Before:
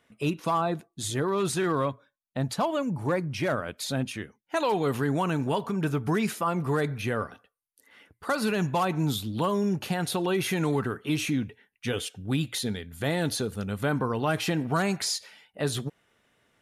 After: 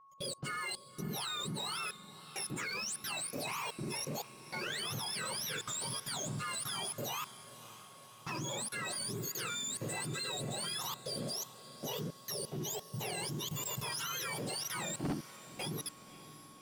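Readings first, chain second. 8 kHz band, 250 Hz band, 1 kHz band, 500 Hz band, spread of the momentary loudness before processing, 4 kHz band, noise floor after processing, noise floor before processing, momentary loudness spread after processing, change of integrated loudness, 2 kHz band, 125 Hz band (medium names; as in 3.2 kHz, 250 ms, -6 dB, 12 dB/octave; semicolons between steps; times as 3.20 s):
-0.5 dB, -16.5 dB, -12.0 dB, -16.0 dB, 6 LU, -3.0 dB, -56 dBFS, -77 dBFS, 8 LU, -9.5 dB, -7.5 dB, -14.0 dB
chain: spectrum inverted on a logarithmic axis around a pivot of 1.2 kHz; level held to a coarse grid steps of 20 dB; waveshaping leveller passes 2; whistle 1.1 kHz -54 dBFS; saturation -28 dBFS, distortion -9 dB; on a send: echo that smears into a reverb 566 ms, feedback 61%, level -15.5 dB; on the sum: trim -4 dB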